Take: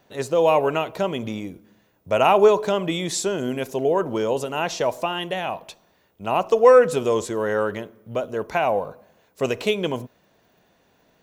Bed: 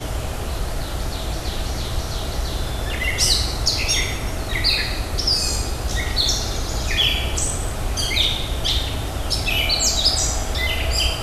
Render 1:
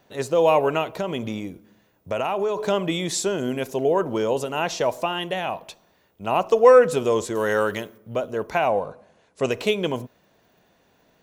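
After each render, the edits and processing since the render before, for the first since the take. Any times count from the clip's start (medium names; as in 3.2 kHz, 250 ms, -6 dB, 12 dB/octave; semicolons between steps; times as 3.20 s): 0.96–2.62 s: compression, threshold -21 dBFS; 7.35–7.98 s: treble shelf 2.4 kHz +11 dB; 8.68–9.51 s: brick-wall FIR low-pass 11 kHz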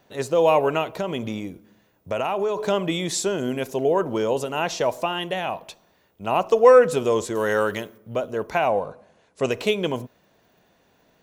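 no audible change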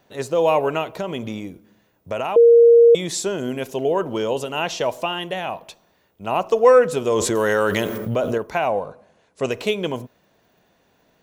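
2.36–2.95 s: bleep 468 Hz -7 dBFS; 3.63–5.15 s: peaking EQ 3 kHz +5.5 dB 0.45 oct; 7.07–8.38 s: level flattener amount 70%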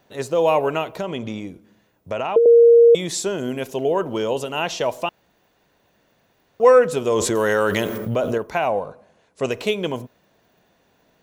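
1.05–2.46 s: low-pass that closes with the level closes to 400 Hz, closed at -10 dBFS; 5.09–6.60 s: room tone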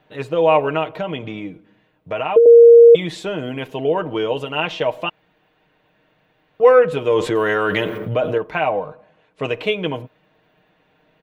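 resonant high shelf 4.3 kHz -13.5 dB, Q 1.5; comb 6.5 ms, depth 59%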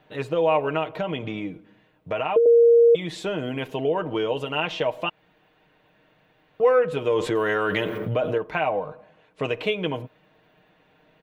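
compression 1.5:1, threshold -28 dBFS, peak gain reduction 8 dB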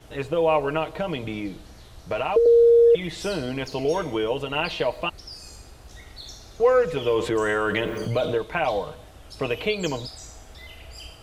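add bed -21.5 dB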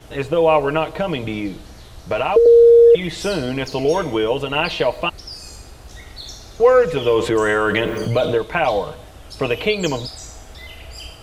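trim +6 dB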